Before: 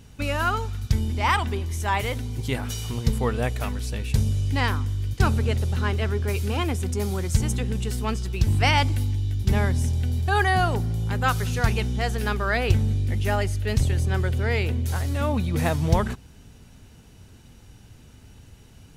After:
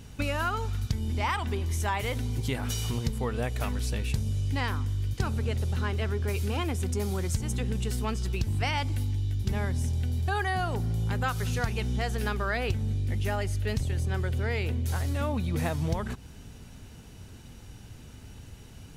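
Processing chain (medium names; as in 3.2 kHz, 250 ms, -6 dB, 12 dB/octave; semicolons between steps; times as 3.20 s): compression 5:1, threshold -28 dBFS, peak gain reduction 14.5 dB; trim +2 dB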